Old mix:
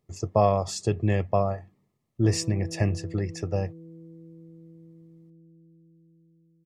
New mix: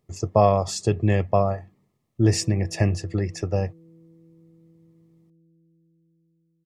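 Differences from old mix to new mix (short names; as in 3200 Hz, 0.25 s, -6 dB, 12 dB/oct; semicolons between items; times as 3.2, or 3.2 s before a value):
speech +3.5 dB; background -6.0 dB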